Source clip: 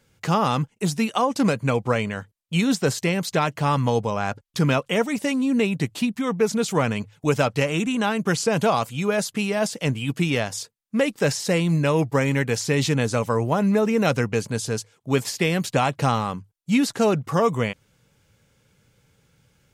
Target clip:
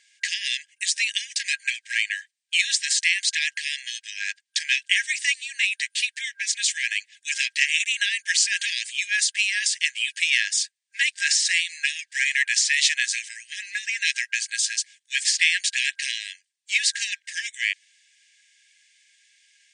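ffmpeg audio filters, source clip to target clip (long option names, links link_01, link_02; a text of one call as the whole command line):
ffmpeg -i in.wav -af "acontrast=80,afftfilt=real='re*between(b*sr/4096,1600,9500)':imag='im*between(b*sr/4096,1600,9500)':win_size=4096:overlap=0.75,volume=2dB" out.wav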